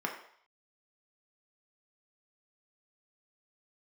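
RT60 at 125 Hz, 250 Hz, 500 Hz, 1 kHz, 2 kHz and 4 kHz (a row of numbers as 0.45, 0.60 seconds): 0.35, 0.40, 0.55, 0.65, 0.60, 0.60 seconds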